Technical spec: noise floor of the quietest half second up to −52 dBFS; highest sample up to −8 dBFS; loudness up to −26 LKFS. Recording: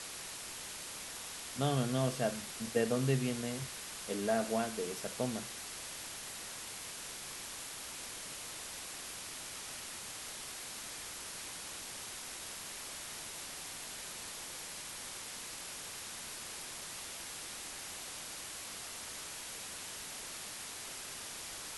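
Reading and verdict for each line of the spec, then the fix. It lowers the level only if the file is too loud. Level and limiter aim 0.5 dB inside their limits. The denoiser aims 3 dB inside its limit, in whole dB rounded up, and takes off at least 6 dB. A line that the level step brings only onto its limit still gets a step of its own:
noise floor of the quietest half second −45 dBFS: out of spec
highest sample −18.5 dBFS: in spec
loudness −39.5 LKFS: in spec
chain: broadband denoise 10 dB, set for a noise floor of −45 dBFS

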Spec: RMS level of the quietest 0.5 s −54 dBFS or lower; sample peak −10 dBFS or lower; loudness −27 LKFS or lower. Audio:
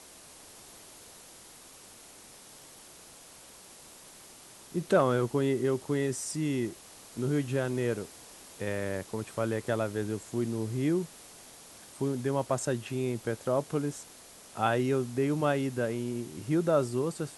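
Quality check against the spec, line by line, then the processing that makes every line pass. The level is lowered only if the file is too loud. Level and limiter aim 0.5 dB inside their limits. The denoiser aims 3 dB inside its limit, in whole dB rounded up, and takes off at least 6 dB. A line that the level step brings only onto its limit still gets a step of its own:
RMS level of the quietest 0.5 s −52 dBFS: out of spec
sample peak −12.5 dBFS: in spec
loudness −31.0 LKFS: in spec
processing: broadband denoise 6 dB, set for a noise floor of −52 dBFS

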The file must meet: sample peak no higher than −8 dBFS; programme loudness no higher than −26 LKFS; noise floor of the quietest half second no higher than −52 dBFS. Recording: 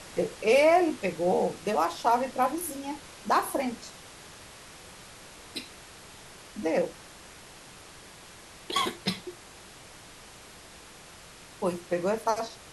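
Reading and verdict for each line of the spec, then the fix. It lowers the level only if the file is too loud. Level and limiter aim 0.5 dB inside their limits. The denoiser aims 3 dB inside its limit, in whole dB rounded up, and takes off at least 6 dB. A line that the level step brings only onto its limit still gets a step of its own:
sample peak −10.5 dBFS: in spec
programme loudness −28.0 LKFS: in spec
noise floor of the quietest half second −49 dBFS: out of spec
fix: broadband denoise 6 dB, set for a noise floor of −49 dBFS

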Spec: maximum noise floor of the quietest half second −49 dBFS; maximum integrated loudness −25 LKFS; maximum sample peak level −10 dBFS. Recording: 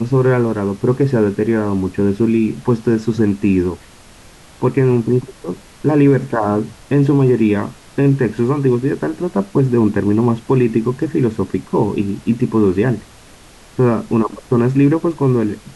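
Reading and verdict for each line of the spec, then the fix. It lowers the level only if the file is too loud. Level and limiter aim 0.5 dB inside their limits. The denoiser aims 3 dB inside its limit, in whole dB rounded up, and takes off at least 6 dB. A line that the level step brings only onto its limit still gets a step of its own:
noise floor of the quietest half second −42 dBFS: out of spec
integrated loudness −16.5 LKFS: out of spec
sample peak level −4.5 dBFS: out of spec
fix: level −9 dB

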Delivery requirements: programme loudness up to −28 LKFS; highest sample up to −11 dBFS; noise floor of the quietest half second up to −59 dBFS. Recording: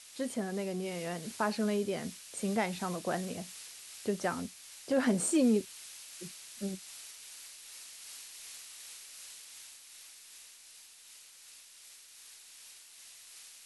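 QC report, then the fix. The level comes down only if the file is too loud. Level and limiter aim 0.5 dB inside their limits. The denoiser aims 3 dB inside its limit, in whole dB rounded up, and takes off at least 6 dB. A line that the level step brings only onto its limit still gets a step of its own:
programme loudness −35.5 LKFS: in spec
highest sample −17.0 dBFS: in spec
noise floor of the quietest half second −55 dBFS: out of spec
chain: broadband denoise 7 dB, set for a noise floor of −55 dBFS

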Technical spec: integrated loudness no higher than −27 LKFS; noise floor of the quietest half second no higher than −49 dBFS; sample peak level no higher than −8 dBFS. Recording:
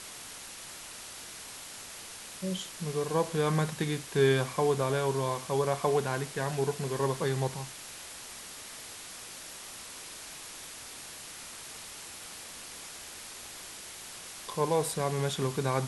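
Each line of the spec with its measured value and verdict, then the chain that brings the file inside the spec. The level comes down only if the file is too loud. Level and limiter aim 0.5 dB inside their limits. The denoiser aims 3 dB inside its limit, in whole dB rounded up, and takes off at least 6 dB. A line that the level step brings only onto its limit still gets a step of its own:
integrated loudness −33.5 LKFS: in spec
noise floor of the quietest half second −45 dBFS: out of spec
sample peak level −12.5 dBFS: in spec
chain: broadband denoise 7 dB, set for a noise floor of −45 dBFS

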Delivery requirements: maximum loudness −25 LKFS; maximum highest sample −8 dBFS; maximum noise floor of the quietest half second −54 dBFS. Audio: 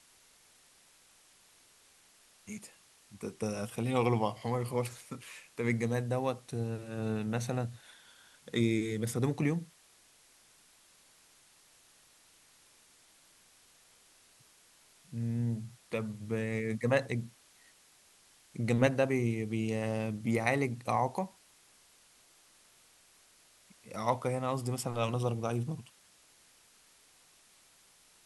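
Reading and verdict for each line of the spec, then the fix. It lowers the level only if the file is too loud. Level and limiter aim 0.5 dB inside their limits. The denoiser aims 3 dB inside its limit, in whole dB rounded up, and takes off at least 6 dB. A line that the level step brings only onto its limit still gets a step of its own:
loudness −33.5 LKFS: in spec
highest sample −13.0 dBFS: in spec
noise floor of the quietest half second −63 dBFS: in spec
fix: no processing needed

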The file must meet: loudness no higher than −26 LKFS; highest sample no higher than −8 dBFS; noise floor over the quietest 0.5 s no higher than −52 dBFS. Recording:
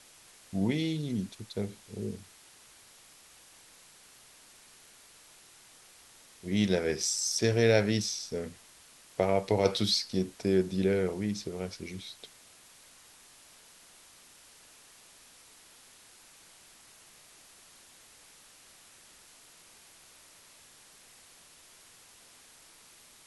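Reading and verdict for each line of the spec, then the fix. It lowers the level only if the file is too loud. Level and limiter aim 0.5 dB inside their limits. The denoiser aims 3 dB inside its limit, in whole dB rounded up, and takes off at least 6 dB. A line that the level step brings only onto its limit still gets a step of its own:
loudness −30.0 LKFS: in spec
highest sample −10.0 dBFS: in spec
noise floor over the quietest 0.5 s −57 dBFS: in spec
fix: no processing needed

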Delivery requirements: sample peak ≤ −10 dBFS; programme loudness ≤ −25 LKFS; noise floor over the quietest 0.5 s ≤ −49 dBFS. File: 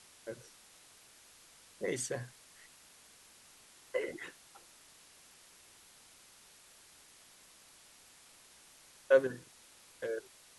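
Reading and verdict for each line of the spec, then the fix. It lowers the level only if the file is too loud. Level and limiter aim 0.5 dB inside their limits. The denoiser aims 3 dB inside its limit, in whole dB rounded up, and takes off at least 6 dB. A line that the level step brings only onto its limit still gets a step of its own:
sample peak −13.5 dBFS: in spec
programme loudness −36.0 LKFS: in spec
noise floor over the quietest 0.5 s −60 dBFS: in spec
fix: no processing needed

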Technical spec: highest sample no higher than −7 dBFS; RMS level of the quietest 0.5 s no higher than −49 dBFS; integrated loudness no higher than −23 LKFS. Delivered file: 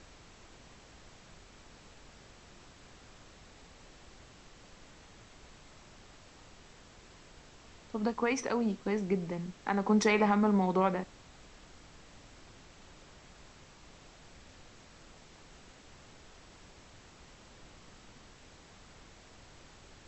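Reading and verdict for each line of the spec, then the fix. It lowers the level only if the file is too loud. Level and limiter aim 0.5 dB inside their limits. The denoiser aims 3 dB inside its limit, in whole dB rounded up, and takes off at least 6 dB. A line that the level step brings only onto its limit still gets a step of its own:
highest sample −14.5 dBFS: in spec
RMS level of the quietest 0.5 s −56 dBFS: in spec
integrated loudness −30.5 LKFS: in spec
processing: no processing needed

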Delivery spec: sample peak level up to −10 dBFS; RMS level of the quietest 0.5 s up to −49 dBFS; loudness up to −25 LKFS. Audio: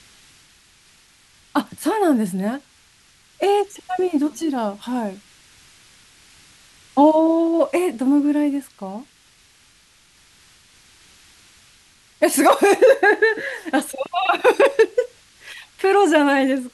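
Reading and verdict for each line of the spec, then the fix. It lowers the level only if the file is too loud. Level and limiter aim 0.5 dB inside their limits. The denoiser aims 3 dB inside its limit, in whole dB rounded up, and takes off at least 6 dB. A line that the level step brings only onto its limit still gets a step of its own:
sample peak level −3.5 dBFS: out of spec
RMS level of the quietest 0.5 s −54 dBFS: in spec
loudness −18.5 LKFS: out of spec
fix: level −7 dB

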